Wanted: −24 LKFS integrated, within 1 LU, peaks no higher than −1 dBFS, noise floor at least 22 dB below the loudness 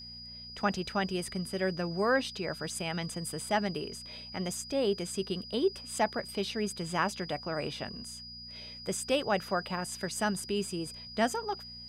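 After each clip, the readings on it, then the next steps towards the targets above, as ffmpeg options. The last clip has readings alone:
mains hum 60 Hz; hum harmonics up to 240 Hz; level of the hum −52 dBFS; interfering tone 4,900 Hz; level of the tone −44 dBFS; integrated loudness −33.0 LKFS; sample peak −14.5 dBFS; target loudness −24.0 LKFS
→ -af "bandreject=frequency=60:width_type=h:width=4,bandreject=frequency=120:width_type=h:width=4,bandreject=frequency=180:width_type=h:width=4,bandreject=frequency=240:width_type=h:width=4"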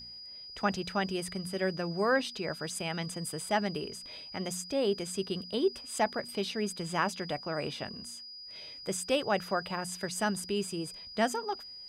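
mains hum none found; interfering tone 4,900 Hz; level of the tone −44 dBFS
→ -af "bandreject=frequency=4900:width=30"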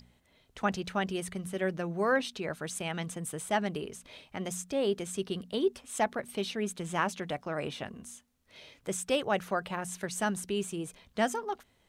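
interfering tone none found; integrated loudness −33.5 LKFS; sample peak −14.5 dBFS; target loudness −24.0 LKFS
→ -af "volume=9.5dB"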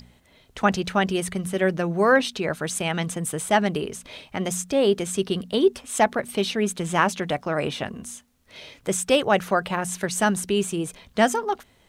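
integrated loudness −24.0 LKFS; sample peak −5.0 dBFS; background noise floor −59 dBFS

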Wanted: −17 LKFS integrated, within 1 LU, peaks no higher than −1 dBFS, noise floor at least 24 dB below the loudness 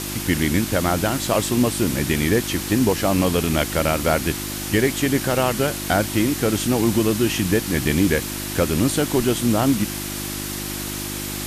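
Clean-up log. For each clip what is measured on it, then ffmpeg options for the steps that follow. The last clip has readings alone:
mains hum 50 Hz; hum harmonics up to 350 Hz; level of the hum −29 dBFS; background noise floor −29 dBFS; target noise floor −45 dBFS; integrated loudness −20.5 LKFS; sample peak −5.5 dBFS; target loudness −17.0 LKFS
→ -af "bandreject=frequency=50:width_type=h:width=4,bandreject=frequency=100:width_type=h:width=4,bandreject=frequency=150:width_type=h:width=4,bandreject=frequency=200:width_type=h:width=4,bandreject=frequency=250:width_type=h:width=4,bandreject=frequency=300:width_type=h:width=4,bandreject=frequency=350:width_type=h:width=4"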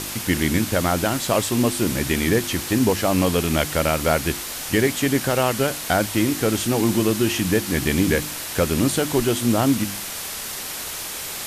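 mains hum none found; background noise floor −31 dBFS; target noise floor −45 dBFS
→ -af "afftdn=noise_reduction=14:noise_floor=-31"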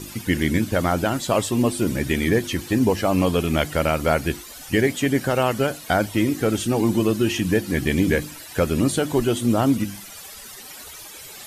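background noise floor −40 dBFS; target noise floor −46 dBFS
→ -af "afftdn=noise_reduction=6:noise_floor=-40"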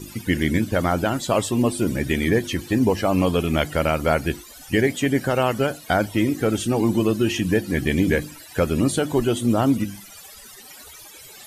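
background noise floor −43 dBFS; target noise floor −46 dBFS
→ -af "afftdn=noise_reduction=6:noise_floor=-43"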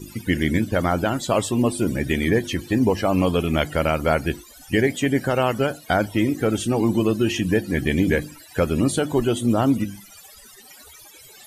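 background noise floor −47 dBFS; integrated loudness −22.0 LKFS; sample peak −6.5 dBFS; target loudness −17.0 LKFS
→ -af "volume=5dB"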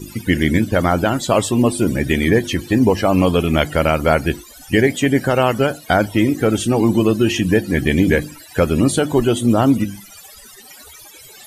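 integrated loudness −17.0 LKFS; sample peak −1.5 dBFS; background noise floor −42 dBFS

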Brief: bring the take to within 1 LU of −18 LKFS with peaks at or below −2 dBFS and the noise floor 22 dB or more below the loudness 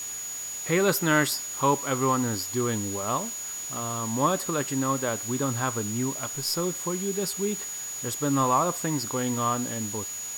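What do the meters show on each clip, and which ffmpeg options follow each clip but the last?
interfering tone 6,800 Hz; level of the tone −33 dBFS; background noise floor −35 dBFS; target noise floor −49 dBFS; integrated loudness −27.0 LKFS; sample peak −9.0 dBFS; target loudness −18.0 LKFS
→ -af "bandreject=frequency=6800:width=30"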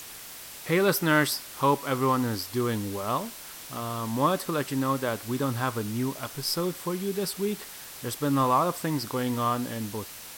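interfering tone none found; background noise floor −43 dBFS; target noise floor −50 dBFS
→ -af "afftdn=noise_reduction=7:noise_floor=-43"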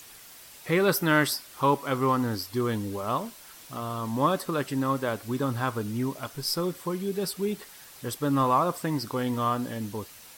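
background noise floor −49 dBFS; target noise floor −50 dBFS
→ -af "afftdn=noise_reduction=6:noise_floor=-49"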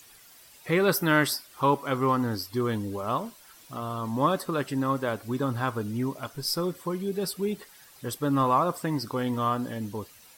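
background noise floor −53 dBFS; integrated loudness −28.0 LKFS; sample peak −10.0 dBFS; target loudness −18.0 LKFS
→ -af "volume=10dB,alimiter=limit=-2dB:level=0:latency=1"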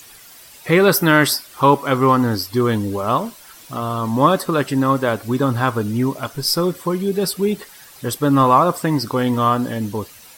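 integrated loudness −18.0 LKFS; sample peak −2.0 dBFS; background noise floor −43 dBFS

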